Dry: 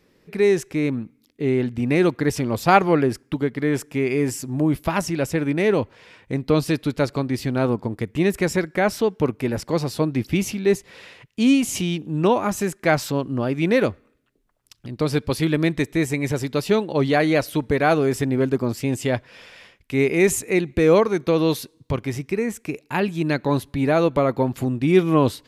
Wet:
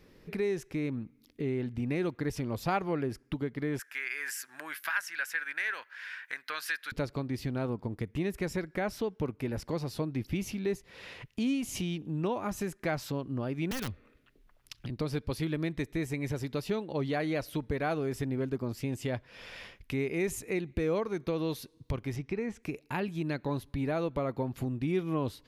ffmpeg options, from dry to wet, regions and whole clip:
-filter_complex "[0:a]asettb=1/sr,asplit=3[a][b][c];[a]atrim=end=3.794[d];[b]atrim=start=3.79:end=6.92,asetpts=PTS-STARTPTS,afade=t=in:d=0.004:c=qsin,afade=t=out:st=3.126:d=0.004:c=qsin,highpass=f=1.6k:t=q:w=7.4,highshelf=f=11k:g=9[e];[c]atrim=start=6.916[f];[d][e]acrossfade=d=0.004:c1=hsin:c2=qsin[g];[g][f]acrossfade=d=0.004:c1=qsin:c2=hsin,asettb=1/sr,asplit=3[h][i][j];[h]atrim=end=13.714[k];[i]atrim=start=13.71:end=14.9,asetpts=PTS-STARTPTS,afade=t=in:d=0.004:c=qsin,afade=t=out:st=1.186:d=0.004:c=qsin,equalizer=f=2.4k:w=0.64:g=6.5,acrossover=split=250|3000[l][m][n];[m]acompressor=threshold=-44dB:ratio=2:attack=3.2:release=140:knee=2.83:detection=peak[o];[l][o][n]amix=inputs=3:normalize=0,aeval=exprs='(mod(7.94*val(0)+1,2)-1)/7.94':c=same[p];[j]atrim=start=14.896[q];[k][p]acrossfade=d=0.004:c1=hsin:c2=qsin[r];[r][q]acrossfade=d=0.004:c1=qsin:c2=hsin,asettb=1/sr,asplit=3[s][t][u];[s]atrim=end=22.164[v];[t]atrim=start=22.16:end=22.63,asetpts=PTS-STARTPTS,afade=t=in:d=0.004:c=qsin,afade=t=out:st=0.466:d=0.004:c=qsin,lowpass=5.4k,equalizer=f=800:w=4.6:g=4.5[w];[u]atrim=start=22.626[x];[v][w]acrossfade=d=0.004:c1=hsin:c2=qsin[y];[y][x]acrossfade=d=0.004:c1=qsin:c2=hsin,lowshelf=f=69:g=11.5,acompressor=threshold=-40dB:ratio=2,equalizer=f=7.9k:t=o:w=0.45:g=-4.5"

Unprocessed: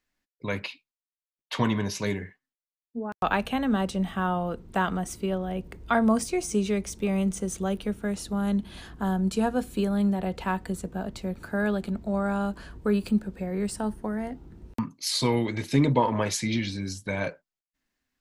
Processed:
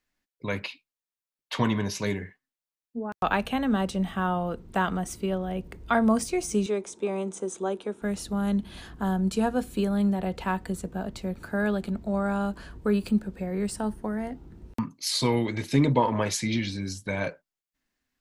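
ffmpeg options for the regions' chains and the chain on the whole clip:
-filter_complex "[0:a]asettb=1/sr,asplit=3[a][b][c];[a]atrim=end=6.664[d];[b]atrim=start=6.66:end=8.02,asetpts=PTS-STARTPTS,afade=t=in:d=0.004:c=qsin,afade=t=out:st=1.356:d=0.004:c=qsin,highpass=330,equalizer=f=370:t=q:w=4:g=6,equalizer=f=930:t=q:w=4:g=5,equalizer=f=2k:t=q:w=4:g=-7,equalizer=f=2.9k:t=q:w=4:g=-6,equalizer=f=5.6k:t=q:w=4:g=-6,lowpass=f=8.6k:w=0.5412,lowpass=f=8.6k:w=1.3066,bandreject=f=4.5k:w=6.4[e];[c]atrim=start=8.016[f];[d][e]acrossfade=d=0.004:c1=hsin:c2=qsin[g];[g][f]acrossfade=d=0.004:c1=qsin:c2=hsin"

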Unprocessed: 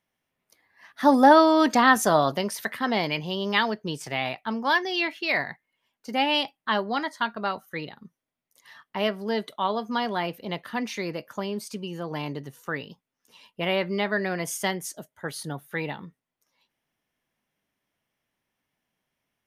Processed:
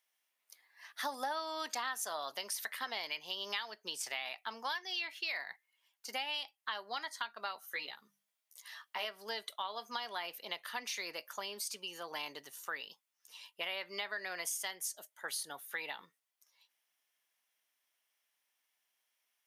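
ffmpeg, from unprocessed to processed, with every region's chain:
-filter_complex "[0:a]asettb=1/sr,asplit=3[a][b][c];[a]atrim=end=7.614[d];[b]atrim=start=7.61:end=9.05,asetpts=PTS-STARTPTS,afade=t=in:d=0.004:c=qsin,afade=t=out:st=1.436:d=0.004:c=qsin,bandreject=f=50:t=h:w=6,bandreject=f=100:t=h:w=6,bandreject=f=150:t=h:w=6,bandreject=f=200:t=h:w=6,asplit=2[e][f];[f]adelay=14,volume=-3dB[g];[e][g]amix=inputs=2:normalize=0,atrim=end_sample=63504[h];[c]atrim=start=9.046[i];[d][h]acrossfade=d=0.004:c1=hsin:c2=qsin[j];[j][i]acrossfade=d=0.004:c1=qsin:c2=hsin,highpass=1.2k,equalizer=f=1.6k:w=0.54:g=-7.5,acompressor=threshold=-41dB:ratio=6,volume=5dB"

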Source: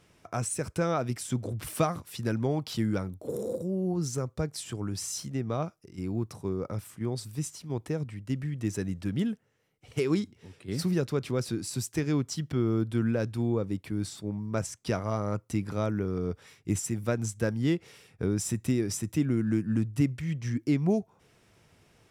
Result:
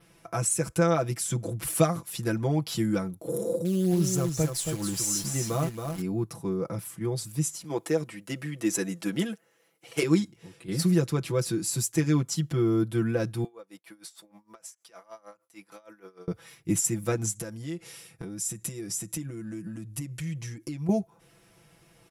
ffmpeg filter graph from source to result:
-filter_complex "[0:a]asettb=1/sr,asplit=3[a][b][c];[a]atrim=end=3.654[d];[b]atrim=start=3.65:end=6.02,asetpts=PTS-STARTPTS,afade=t=in:d=0.004:c=qsin,afade=t=out:st=2.366:d=0.004:c=qsin,acrusher=bits=8:dc=4:mix=0:aa=0.000001,aecho=1:1:275:0.501,atrim=end_sample=104517[e];[c]atrim=start=6.016[f];[d][e]acrossfade=d=0.004:c1=hsin:c2=qsin[g];[g][f]acrossfade=d=0.004:c1=qsin:c2=hsin,asettb=1/sr,asplit=3[h][i][j];[h]atrim=end=7.644[k];[i]atrim=start=7.64:end=10.03,asetpts=PTS-STARTPTS,afade=t=in:d=0.004:c=qsin,afade=t=out:st=2.386:d=0.004:c=qsin,highpass=320,acontrast=27[l];[j]atrim=start=10.026[m];[k][l]acrossfade=d=0.004:c1=hsin:c2=qsin[n];[n][m]acrossfade=d=0.004:c1=qsin:c2=hsin,asettb=1/sr,asplit=3[o][p][q];[o]atrim=end=13.444[r];[p]atrim=start=13.44:end=16.28,asetpts=PTS-STARTPTS,afade=t=in:d=0.004:c=qsin,afade=t=out:st=2.836:d=0.004:c=qsin,highpass=620,acompressor=threshold=-41dB:ratio=6:attack=3.2:release=140:knee=1:detection=peak,aeval=exprs='val(0)*pow(10,-21*(0.5-0.5*cos(2*PI*6.5*n/s))/20)':c=same[s];[q]atrim=start=16.276[t];[r][s]acrossfade=d=0.004:c1=hsin:c2=qsin[u];[u][t]acrossfade=d=0.004:c1=qsin:c2=hsin,asettb=1/sr,asplit=3[v][w][x];[v]atrim=end=17.354[y];[w]atrim=start=17.35:end=20.89,asetpts=PTS-STARTPTS,afade=t=in:d=0.004:c=qsin,afade=t=out:st=3.536:d=0.004:c=qsin,lowpass=11k,aemphasis=mode=production:type=cd,acompressor=threshold=-35dB:ratio=8:attack=3.2:release=140:knee=1:detection=peak[z];[x]atrim=start=20.886[aa];[y][z]acrossfade=d=0.004:c1=hsin:c2=qsin[ab];[ab][aa]acrossfade=d=0.004:c1=qsin:c2=hsin,equalizer=f=11k:w=3.8:g=12.5,aecho=1:1:6:0.89,adynamicequalizer=threshold=0.00282:dfrequency=7100:dqfactor=3.7:tfrequency=7100:tqfactor=3.7:attack=5:release=100:ratio=0.375:range=3.5:mode=boostabove:tftype=bell"

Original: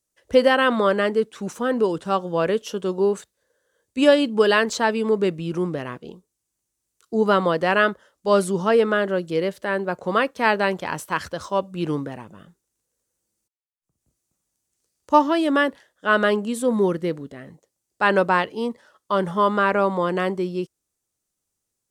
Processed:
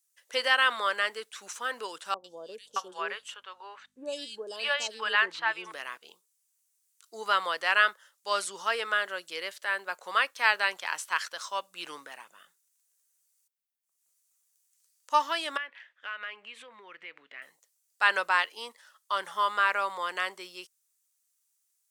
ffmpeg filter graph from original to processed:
-filter_complex "[0:a]asettb=1/sr,asplit=3[a][b][c];[a]atrim=end=2.144[d];[b]atrim=start=2.14:end=5.72,asetpts=PTS-STARTPTS,afade=t=in:d=0.004:c=qsin,afade=t=out:st=3.576:d=0.004:c=qsin,aemphasis=mode=reproduction:type=50fm,acrossover=split=590|3900[e][f][g];[g]adelay=100[h];[f]adelay=620[i];[e][i][h]amix=inputs=3:normalize=0,atrim=end_sample=157878,aeval=exprs='val(0)+0.01*(sin(2*PI*50*n/s)+sin(2*PI*2*50*n/s)/2+sin(2*PI*3*50*n/s)/3+sin(2*PI*4*50*n/s)/4+sin(2*PI*5*50*n/s)/5)':c=same[j];[c]atrim=start=5.716[k];[d][j]acrossfade=d=0.004:c1=hsin:c2=qsin[l];[l][k]acrossfade=d=0.004:c1=qsin:c2=hsin,asettb=1/sr,asplit=3[m][n][o];[m]atrim=end=15.574[p];[n]atrim=start=15.57:end=17.42,asetpts=PTS-STARTPTS,afade=t=in:d=0.004:c=qsin,afade=t=out:st=1.846:d=0.004:c=qsin,lowpass=f=2.4k:t=q:w=3.9,acompressor=threshold=-33dB:ratio=4:attack=3.2:release=140:knee=1:detection=peak[q];[o]atrim=start=17.416[r];[p][q]acrossfade=d=0.004:c1=hsin:c2=qsin[s];[s][r]acrossfade=d=0.004:c1=qsin:c2=hsin,highshelf=f=9.2k:g=9.5,acrossover=split=8200[t][u];[u]acompressor=threshold=-56dB:ratio=4:attack=1:release=60[v];[t][v]amix=inputs=2:normalize=0,highpass=1.4k"

